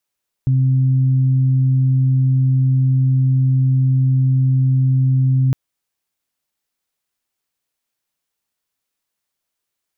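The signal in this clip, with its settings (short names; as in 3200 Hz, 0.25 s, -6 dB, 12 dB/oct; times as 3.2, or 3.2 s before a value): steady additive tone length 5.06 s, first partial 131 Hz, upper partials -16.5 dB, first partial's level -11.5 dB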